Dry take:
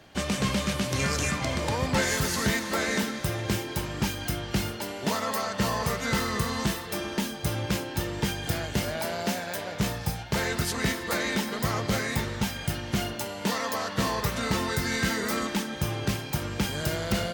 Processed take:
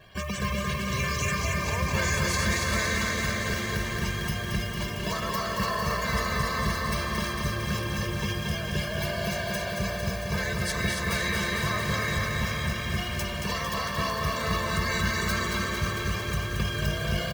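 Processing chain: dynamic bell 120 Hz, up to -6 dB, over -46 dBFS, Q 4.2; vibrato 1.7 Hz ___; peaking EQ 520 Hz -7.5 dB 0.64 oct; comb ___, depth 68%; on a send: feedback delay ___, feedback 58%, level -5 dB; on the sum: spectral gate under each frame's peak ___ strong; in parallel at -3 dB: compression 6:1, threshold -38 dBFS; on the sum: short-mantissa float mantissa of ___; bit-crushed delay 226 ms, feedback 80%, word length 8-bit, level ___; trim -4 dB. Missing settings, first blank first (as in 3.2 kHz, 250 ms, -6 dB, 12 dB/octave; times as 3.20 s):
20 cents, 1.8 ms, 280 ms, -20 dB, 2-bit, -5 dB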